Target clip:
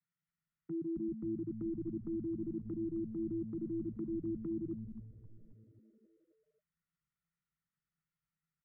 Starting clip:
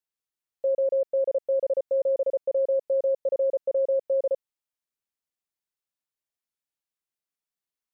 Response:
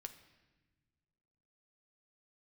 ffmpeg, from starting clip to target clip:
-filter_complex "[0:a]agate=range=-7dB:threshold=-35dB:ratio=16:detection=peak,equalizer=f=220:w=1.2:g=12,acrossover=split=350|760[a][b][c];[a]acompressor=threshold=-38dB:ratio=4[d];[b]acompressor=threshold=-24dB:ratio=4[e];[c]acompressor=threshold=-40dB:ratio=4[f];[d][e][f]amix=inputs=3:normalize=0,asplit=3[g][h][i];[g]bandpass=f=270:t=q:w=8,volume=0dB[j];[h]bandpass=f=2.29k:t=q:w=8,volume=-6dB[k];[i]bandpass=f=3.01k:t=q:w=8,volume=-9dB[l];[j][k][l]amix=inputs=3:normalize=0,acompressor=threshold=-52dB:ratio=6,alimiter=level_in=27.5dB:limit=-24dB:level=0:latency=1:release=10,volume=-27.5dB,asetrate=29433,aresample=44100,atempo=1.49831,asplit=8[m][n][o][p][q][r][s][t];[n]adelay=243,afreqshift=-120,volume=-8.5dB[u];[o]adelay=486,afreqshift=-240,volume=-13.7dB[v];[p]adelay=729,afreqshift=-360,volume=-18.9dB[w];[q]adelay=972,afreqshift=-480,volume=-24.1dB[x];[r]adelay=1215,afreqshift=-600,volume=-29.3dB[y];[s]adelay=1458,afreqshift=-720,volume=-34.5dB[z];[t]adelay=1701,afreqshift=-840,volume=-39.7dB[aa];[m][u][v][w][x][y][z][aa]amix=inputs=8:normalize=0,asetrate=40517,aresample=44100,volume=18dB"

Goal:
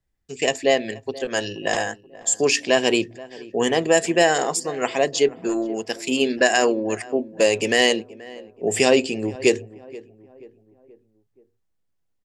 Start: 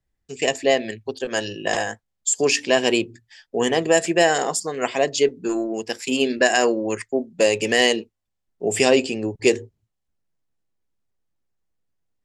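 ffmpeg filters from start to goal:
-filter_complex "[0:a]asplit=2[a][b];[b]adelay=479,lowpass=f=1.4k:p=1,volume=-19dB,asplit=2[c][d];[d]adelay=479,lowpass=f=1.4k:p=1,volume=0.49,asplit=2[e][f];[f]adelay=479,lowpass=f=1.4k:p=1,volume=0.49,asplit=2[g][h];[h]adelay=479,lowpass=f=1.4k:p=1,volume=0.49[i];[a][c][e][g][i]amix=inputs=5:normalize=0"

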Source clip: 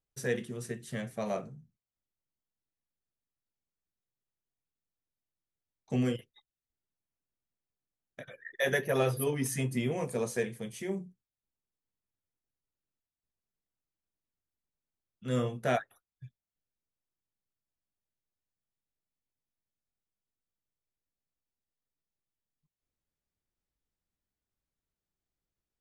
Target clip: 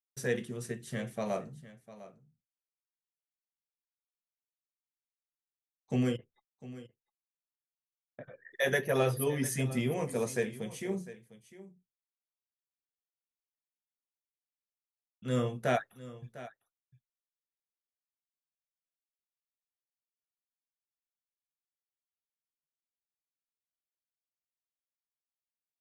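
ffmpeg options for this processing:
-filter_complex "[0:a]asplit=3[a][b][c];[a]afade=t=out:st=6.16:d=0.02[d];[b]lowpass=1.2k,afade=t=in:st=6.16:d=0.02,afade=t=out:st=8.5:d=0.02[e];[c]afade=t=in:st=8.5:d=0.02[f];[d][e][f]amix=inputs=3:normalize=0,agate=range=-33dB:threshold=-60dB:ratio=3:detection=peak,aecho=1:1:702:0.15"

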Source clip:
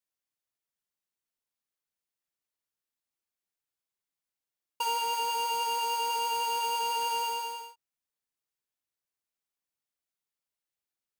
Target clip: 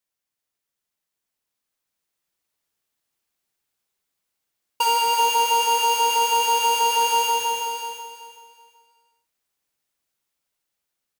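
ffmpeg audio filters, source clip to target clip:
-filter_complex "[0:a]asplit=2[a][b];[b]aecho=0:1:380|760|1140|1520:0.531|0.154|0.0446|0.0129[c];[a][c]amix=inputs=2:normalize=0,dynaudnorm=f=220:g=17:m=4.5dB,volume=5.5dB"

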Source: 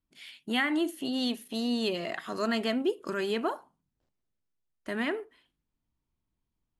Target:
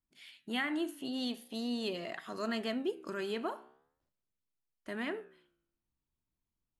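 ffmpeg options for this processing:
-af "flanger=delay=8.3:depth=7.8:regen=-87:speed=0.44:shape=sinusoidal,volume=-2dB"

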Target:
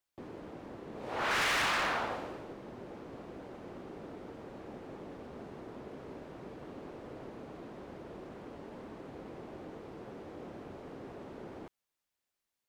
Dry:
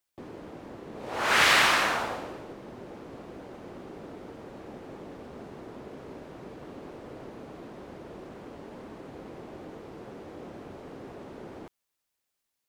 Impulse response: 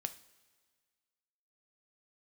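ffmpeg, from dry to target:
-filter_complex "[0:a]highshelf=f=5.3k:g=-4.5,acrossover=split=5000[a][b];[b]acompressor=threshold=-59dB:ratio=4:attack=1:release=60[c];[a][c]amix=inputs=2:normalize=0,asoftclip=type=hard:threshold=-25dB,volume=-3dB"

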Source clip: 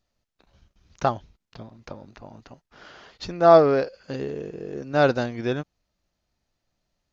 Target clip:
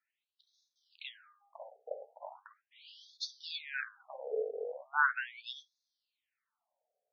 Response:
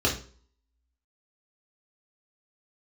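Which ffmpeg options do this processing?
-filter_complex "[0:a]highshelf=f=4k:g=-10.5,bandreject=f=404.2:t=h:w=4,bandreject=f=808.4:t=h:w=4,bandreject=f=1.2126k:t=h:w=4,bandreject=f=1.6168k:t=h:w=4,flanger=delay=8.7:depth=8.4:regen=79:speed=0.78:shape=triangular,acrossover=split=200|1100[a][b][c];[c]crystalizer=i=1.5:c=0[d];[a][b][d]amix=inputs=3:normalize=0,afftfilt=real='re*between(b*sr/1024,560*pow(4800/560,0.5+0.5*sin(2*PI*0.39*pts/sr))/1.41,560*pow(4800/560,0.5+0.5*sin(2*PI*0.39*pts/sr))*1.41)':imag='im*between(b*sr/1024,560*pow(4800/560,0.5+0.5*sin(2*PI*0.39*pts/sr))/1.41,560*pow(4800/560,0.5+0.5*sin(2*PI*0.39*pts/sr))*1.41)':win_size=1024:overlap=0.75,volume=5.5dB"

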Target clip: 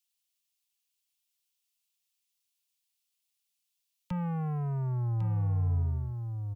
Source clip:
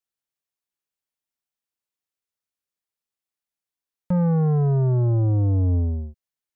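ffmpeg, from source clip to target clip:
-filter_complex "[0:a]firequalizer=gain_entry='entry(190,0);entry(280,-15);entry(780,1);entry(1600,-1);entry(2700,14)':delay=0.05:min_phase=1,aecho=1:1:1101:0.355,acrossover=split=100|260|510[a][b][c][d];[b]acompressor=threshold=-35dB:ratio=6[e];[a][e][c][d]amix=inputs=4:normalize=0,equalizer=f=600:w=3.1:g=-10,volume=-5dB"

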